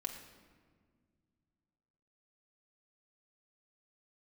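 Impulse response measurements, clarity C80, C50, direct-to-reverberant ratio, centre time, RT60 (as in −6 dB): 8.5 dB, 7.0 dB, 1.5 dB, 27 ms, 1.8 s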